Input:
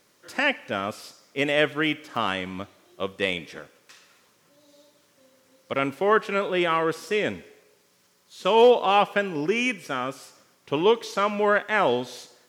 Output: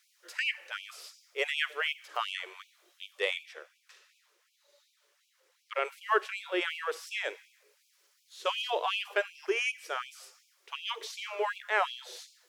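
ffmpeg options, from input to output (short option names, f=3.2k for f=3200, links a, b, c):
-filter_complex "[0:a]asettb=1/sr,asplit=3[a][b][c];[a]atrim=end=3.434[d];[b]atrim=start=3.43:end=5.85,asetpts=PTS-STARTPTS,afade=t=in:d=0.004:c=qsin,afade=t=out:st=2.416:d=0.004:c=qsin,highshelf=f=4.8k:g=-6[e];[c]atrim=start=5.846[f];[d][e]acrossfade=d=0.004:c1=hsin:c2=qsin[g];[g][f]acrossfade=d=0.004:c1=qsin:c2=hsin,acrossover=split=630|1000[h][i][j];[i]aeval=exprs='sgn(val(0))*max(abs(val(0))-0.00335,0)':c=same[k];[h][k][j]amix=inputs=3:normalize=0,afftfilt=real='re*gte(b*sr/1024,310*pow(2300/310,0.5+0.5*sin(2*PI*2.7*pts/sr)))':imag='im*gte(b*sr/1024,310*pow(2300/310,0.5+0.5*sin(2*PI*2.7*pts/sr)))':win_size=1024:overlap=0.75,volume=-4.5dB"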